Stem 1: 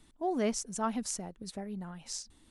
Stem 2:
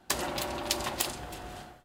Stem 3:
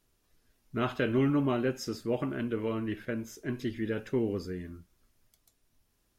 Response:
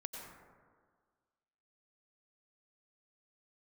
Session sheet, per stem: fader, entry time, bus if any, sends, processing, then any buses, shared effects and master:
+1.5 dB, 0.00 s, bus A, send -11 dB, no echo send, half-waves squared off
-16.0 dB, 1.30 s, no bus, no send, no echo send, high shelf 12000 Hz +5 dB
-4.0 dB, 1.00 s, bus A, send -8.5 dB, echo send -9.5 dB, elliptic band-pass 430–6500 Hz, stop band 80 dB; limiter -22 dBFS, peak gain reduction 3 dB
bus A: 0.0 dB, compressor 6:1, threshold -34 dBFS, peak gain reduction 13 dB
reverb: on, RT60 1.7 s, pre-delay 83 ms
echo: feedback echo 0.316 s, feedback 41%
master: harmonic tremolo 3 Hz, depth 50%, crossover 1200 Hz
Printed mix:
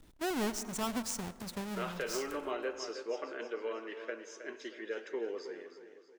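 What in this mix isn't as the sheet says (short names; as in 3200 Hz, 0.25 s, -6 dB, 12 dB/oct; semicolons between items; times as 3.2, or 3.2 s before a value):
stem 1 +1.5 dB -> -4.5 dB; stem 2 -16.0 dB -> -28.0 dB; master: missing harmonic tremolo 3 Hz, depth 50%, crossover 1200 Hz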